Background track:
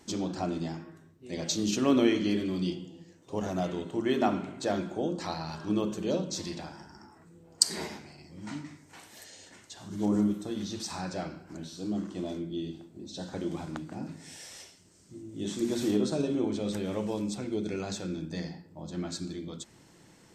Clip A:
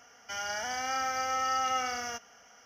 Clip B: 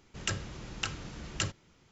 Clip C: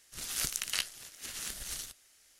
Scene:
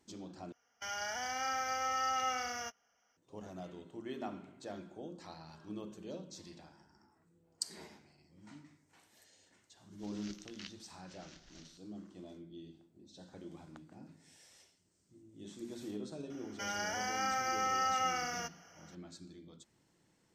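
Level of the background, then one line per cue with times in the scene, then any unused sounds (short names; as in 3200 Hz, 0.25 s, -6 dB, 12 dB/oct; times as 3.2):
background track -15.5 dB
0.52 replace with A -4.5 dB + gate -45 dBFS, range -14 dB
9.86 add C -16 dB + steep low-pass 6300 Hz 48 dB/oct
16.3 add A -3 dB + notch 3600 Hz, Q 5.2
not used: B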